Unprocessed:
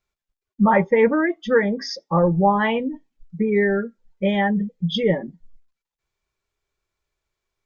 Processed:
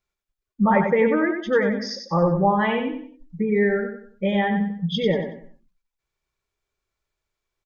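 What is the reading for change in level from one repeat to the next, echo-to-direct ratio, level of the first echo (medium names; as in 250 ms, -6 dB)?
-9.5 dB, -5.5 dB, -6.0 dB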